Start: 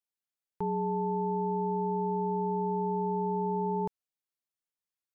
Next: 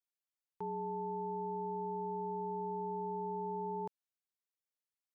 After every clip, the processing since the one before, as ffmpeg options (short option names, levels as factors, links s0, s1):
-af "highpass=f=290:p=1,volume=0.473"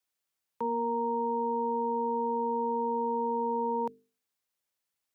-af "bandreject=f=50:t=h:w=6,bandreject=f=100:t=h:w=6,bandreject=f=150:t=h:w=6,bandreject=f=200:t=h:w=6,bandreject=f=250:t=h:w=6,bandreject=f=300:t=h:w=6,bandreject=f=350:t=h:w=6,bandreject=f=400:t=h:w=6,afreqshift=51,volume=2.82"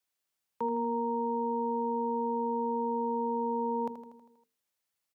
-af "aecho=1:1:80|160|240|320|400|480|560:0.316|0.19|0.114|0.0683|0.041|0.0246|0.0148"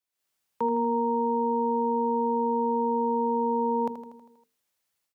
-af "dynaudnorm=f=120:g=3:m=3.35,volume=0.562"